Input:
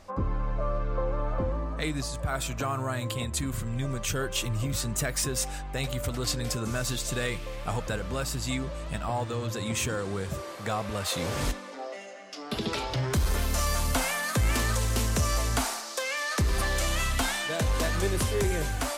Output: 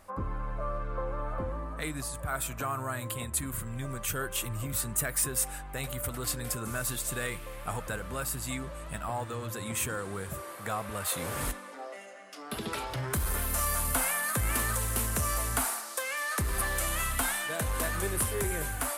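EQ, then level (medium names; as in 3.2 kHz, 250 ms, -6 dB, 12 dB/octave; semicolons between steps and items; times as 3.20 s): peaking EQ 1.4 kHz +6 dB 1.4 oct; resonant high shelf 7.8 kHz +11 dB, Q 1.5; -6.0 dB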